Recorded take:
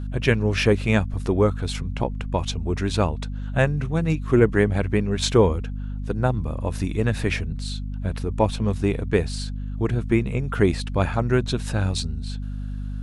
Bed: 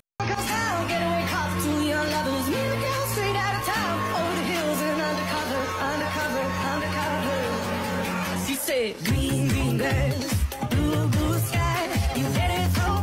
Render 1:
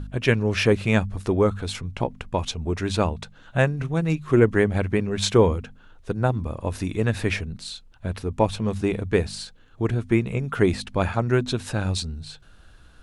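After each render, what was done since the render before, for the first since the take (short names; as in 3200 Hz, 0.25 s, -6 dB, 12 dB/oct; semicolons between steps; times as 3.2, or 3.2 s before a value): de-hum 50 Hz, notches 5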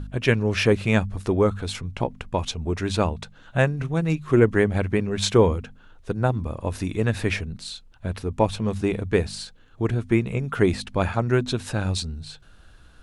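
nothing audible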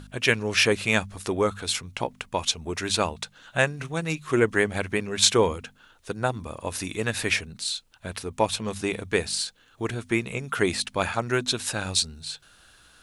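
tilt +3 dB/oct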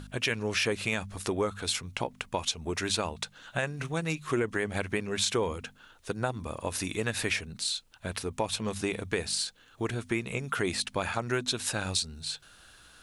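limiter -12 dBFS, peak gain reduction 7 dB; compressor 2:1, threshold -29 dBFS, peak gain reduction 6.5 dB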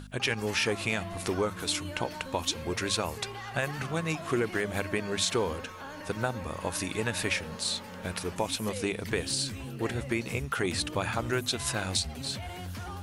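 add bed -16 dB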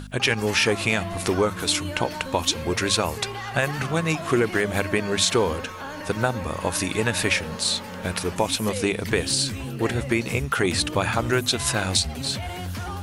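gain +7.5 dB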